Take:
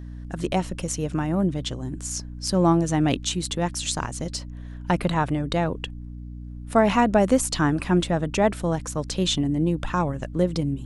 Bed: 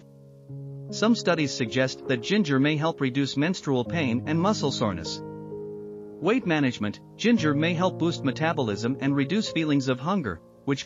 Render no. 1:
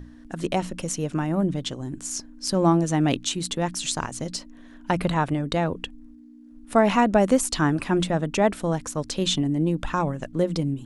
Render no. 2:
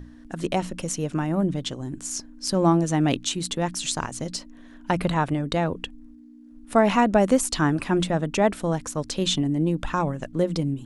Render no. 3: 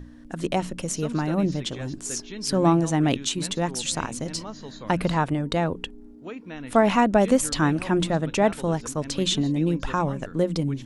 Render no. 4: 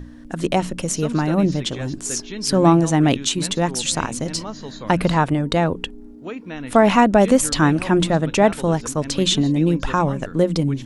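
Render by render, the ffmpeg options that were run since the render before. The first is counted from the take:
-af "bandreject=f=60:t=h:w=6,bandreject=f=120:t=h:w=6,bandreject=f=180:t=h:w=6"
-af anull
-filter_complex "[1:a]volume=-14.5dB[a];[0:a][a]amix=inputs=2:normalize=0"
-af "volume=5.5dB,alimiter=limit=-3dB:level=0:latency=1"

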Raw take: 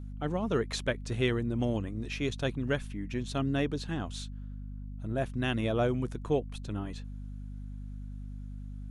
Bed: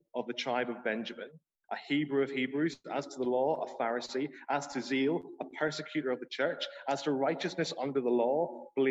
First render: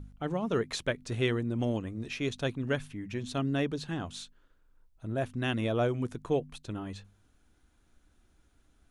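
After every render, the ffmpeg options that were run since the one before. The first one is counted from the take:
-af "bandreject=f=50:t=h:w=4,bandreject=f=100:t=h:w=4,bandreject=f=150:t=h:w=4,bandreject=f=200:t=h:w=4,bandreject=f=250:t=h:w=4"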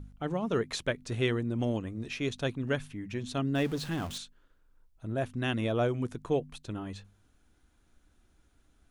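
-filter_complex "[0:a]asettb=1/sr,asplit=3[a][b][c];[a]atrim=end=3.554[d];[b]atrim=start=3.55:end=4.18,asetpts=PTS-STARTPTS,afade=t=in:d=0.004:c=qsin,afade=t=out:st=0.626:d=0.004:c=qsin,aeval=exprs='val(0)+0.5*0.0106*sgn(val(0))':c=same[e];[c]atrim=start=4.176[f];[d][e]acrossfade=d=0.004:c1=hsin:c2=qsin[g];[g][f]acrossfade=d=0.004:c1=qsin:c2=hsin"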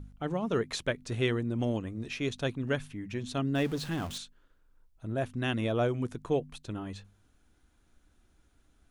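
-af anull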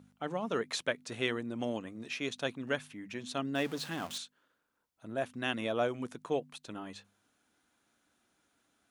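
-af "highpass=260,equalizer=f=370:w=1.9:g=-5"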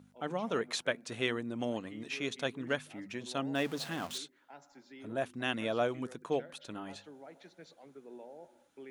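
-filter_complex "[1:a]volume=-21dB[a];[0:a][a]amix=inputs=2:normalize=0"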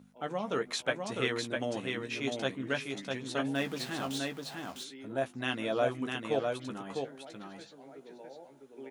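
-filter_complex "[0:a]asplit=2[a][b];[b]adelay=15,volume=-7dB[c];[a][c]amix=inputs=2:normalize=0,asplit=2[d][e];[e]aecho=0:1:653:0.631[f];[d][f]amix=inputs=2:normalize=0"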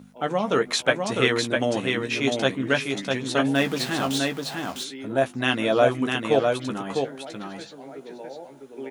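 -af "volume=10.5dB"

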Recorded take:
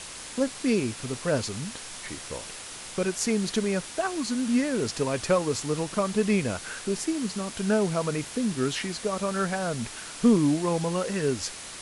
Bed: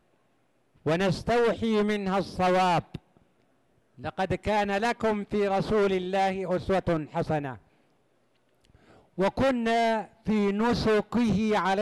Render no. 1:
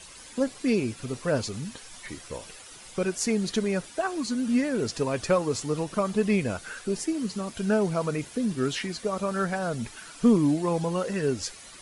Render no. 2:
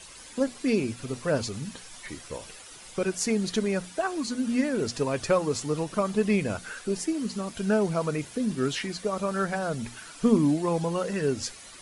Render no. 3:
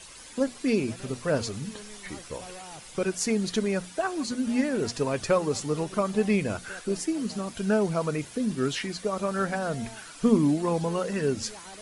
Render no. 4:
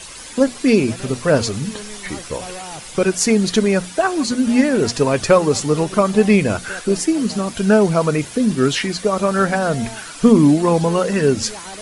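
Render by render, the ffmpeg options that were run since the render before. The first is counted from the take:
-af "afftdn=nr=11:nf=-41"
-af "bandreject=f=60:t=h:w=6,bandreject=f=120:t=h:w=6,bandreject=f=180:t=h:w=6,bandreject=f=240:t=h:w=6"
-filter_complex "[1:a]volume=-21.5dB[a];[0:a][a]amix=inputs=2:normalize=0"
-af "volume=11dB,alimiter=limit=-1dB:level=0:latency=1"

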